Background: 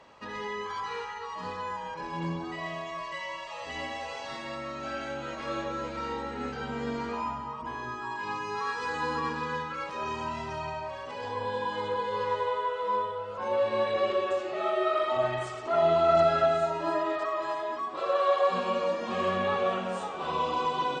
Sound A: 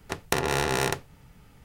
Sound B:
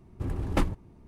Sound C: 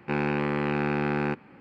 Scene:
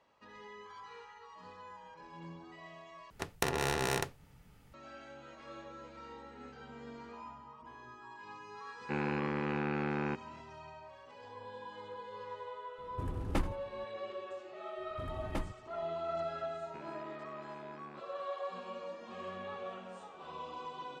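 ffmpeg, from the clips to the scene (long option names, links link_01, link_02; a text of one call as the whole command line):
ffmpeg -i bed.wav -i cue0.wav -i cue1.wav -i cue2.wav -filter_complex "[3:a]asplit=2[link_01][link_02];[2:a]asplit=2[link_03][link_04];[0:a]volume=-15.5dB[link_05];[link_01]lowpass=4800[link_06];[link_03]aecho=1:1:82|164|246:0.141|0.0424|0.0127[link_07];[link_02]acompressor=threshold=-31dB:ratio=6:attack=3.2:release=140:knee=1:detection=peak[link_08];[link_05]asplit=2[link_09][link_10];[link_09]atrim=end=3.104[link_11];[1:a]atrim=end=1.64,asetpts=PTS-STARTPTS,volume=-7dB[link_12];[link_10]atrim=start=4.736[link_13];[link_06]atrim=end=1.6,asetpts=PTS-STARTPTS,volume=-8dB,afade=type=in:duration=0.004:curve=hsin,afade=type=out:start_time=1.596:duration=0.004:curve=hsin,adelay=8810[link_14];[link_07]atrim=end=1.07,asetpts=PTS-STARTPTS,volume=-7dB,afade=type=in:duration=0.004:curve=hsin,afade=type=out:start_time=1.066:duration=0.004:curve=hsin,adelay=12780[link_15];[link_04]atrim=end=1.07,asetpts=PTS-STARTPTS,volume=-12dB,afade=type=in:duration=0.004:curve=hsin,afade=type=out:start_time=1.066:duration=0.004:curve=hsin,adelay=14780[link_16];[link_08]atrim=end=1.6,asetpts=PTS-STARTPTS,volume=-17dB,afade=type=in:duration=0.004:curve=hsin,afade=type=out:start_time=1.596:duration=0.004:curve=hsin,adelay=16660[link_17];[link_11][link_12]acrossfade=duration=0.004:curve1=hsin:curve2=hsin[link_18];[link_18][link_13]acrossfade=duration=0.004:curve1=hsin:curve2=hsin[link_19];[link_19][link_14][link_15][link_16][link_17]amix=inputs=5:normalize=0" out.wav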